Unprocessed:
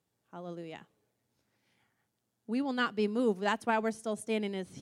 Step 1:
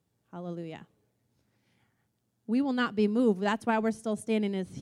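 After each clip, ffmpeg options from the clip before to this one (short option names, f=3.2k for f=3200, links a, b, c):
-af "lowshelf=f=270:g=10"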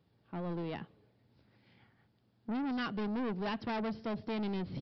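-af "acompressor=threshold=-32dB:ratio=2,aresample=11025,asoftclip=type=tanh:threshold=-38.5dB,aresample=44100,volume=5.5dB"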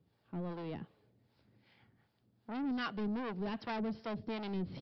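-filter_complex "[0:a]acrossover=split=500[a][b];[a]aeval=exprs='val(0)*(1-0.7/2+0.7/2*cos(2*PI*2.6*n/s))':c=same[c];[b]aeval=exprs='val(0)*(1-0.7/2-0.7/2*cos(2*PI*2.6*n/s))':c=same[d];[c][d]amix=inputs=2:normalize=0,volume=1dB"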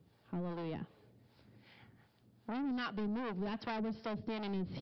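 -af "acompressor=threshold=-48dB:ratio=2,volume=6.5dB"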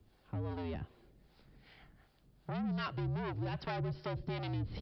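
-af "afreqshift=-72,volume=1dB"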